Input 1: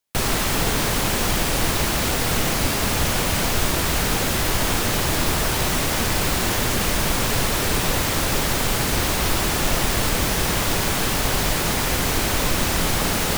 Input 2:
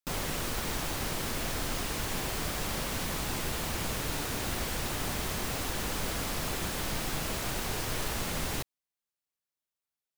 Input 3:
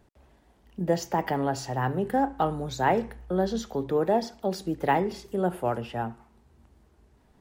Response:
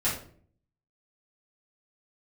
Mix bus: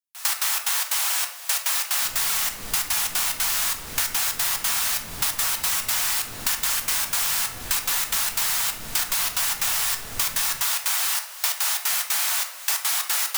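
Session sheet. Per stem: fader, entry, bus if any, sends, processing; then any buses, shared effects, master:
+1.5 dB, 0.00 s, send -11.5 dB, high-pass 850 Hz 24 dB/octave; treble shelf 4.5 kHz +10 dB; trance gate "...x.xx.xx.xxxx" 181 bpm -24 dB
-4.0 dB, 1.95 s, send -10.5 dB, overload inside the chain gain 33.5 dB
mute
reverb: on, RT60 0.50 s, pre-delay 4 ms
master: compression 6:1, threshold -21 dBFS, peak gain reduction 9.5 dB

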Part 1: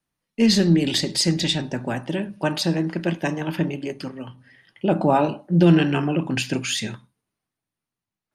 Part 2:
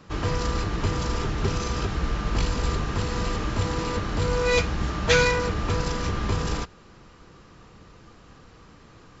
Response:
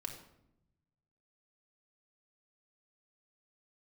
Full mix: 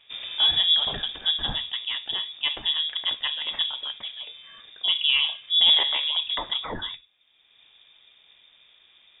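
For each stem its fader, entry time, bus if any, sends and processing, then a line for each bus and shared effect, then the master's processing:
-4.0 dB, 0.00 s, no send, de-esser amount 45%
-7.5 dB, 0.00 s, no send, peak limiter -17.5 dBFS, peak gain reduction 10.5 dB; auto duck -15 dB, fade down 1.70 s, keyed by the first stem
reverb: none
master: frequency inversion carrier 3.6 kHz

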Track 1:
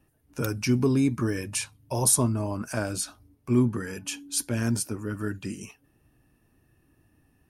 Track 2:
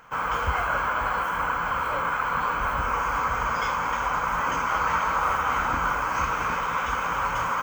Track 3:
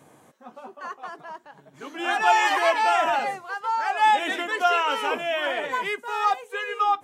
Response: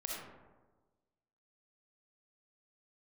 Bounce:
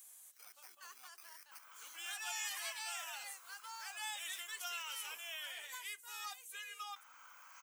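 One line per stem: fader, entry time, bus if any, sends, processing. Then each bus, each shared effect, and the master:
-5.5 dB, 0.00 s, bus A, no send, high-pass 830 Hz 12 dB/octave; level held to a coarse grid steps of 14 dB; sample-and-hold 12×
-10.0 dB, 1.40 s, muted 5.37–6.96 s, bus A, no send, none
-4.5 dB, 0.00 s, no bus, no send, tilt EQ +3.5 dB/octave
bus A: 0.0 dB, bass shelf 410 Hz -7 dB; compression 6:1, threshold -42 dBFS, peak gain reduction 12.5 dB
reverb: none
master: differentiator; compression 1.5:1, threshold -54 dBFS, peak gain reduction 9 dB

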